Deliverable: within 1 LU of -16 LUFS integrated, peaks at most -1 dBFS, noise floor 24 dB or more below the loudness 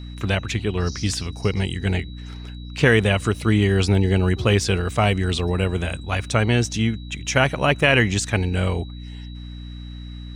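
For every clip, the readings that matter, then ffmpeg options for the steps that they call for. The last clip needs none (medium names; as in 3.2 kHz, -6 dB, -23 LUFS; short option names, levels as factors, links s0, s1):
hum 60 Hz; highest harmonic 300 Hz; hum level -34 dBFS; steady tone 3.9 kHz; tone level -46 dBFS; loudness -21.0 LUFS; peak level -2.5 dBFS; loudness target -16.0 LUFS
-> -af "bandreject=f=60:t=h:w=4,bandreject=f=120:t=h:w=4,bandreject=f=180:t=h:w=4,bandreject=f=240:t=h:w=4,bandreject=f=300:t=h:w=4"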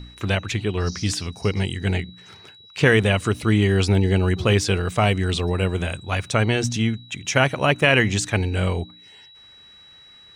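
hum not found; steady tone 3.9 kHz; tone level -46 dBFS
-> -af "bandreject=f=3900:w=30"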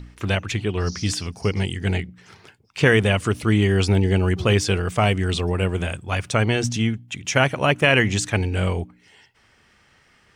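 steady tone not found; loudness -21.5 LUFS; peak level -3.0 dBFS; loudness target -16.0 LUFS
-> -af "volume=1.88,alimiter=limit=0.891:level=0:latency=1"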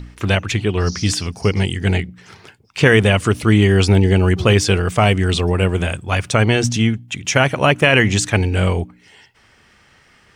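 loudness -16.5 LUFS; peak level -1.0 dBFS; noise floor -53 dBFS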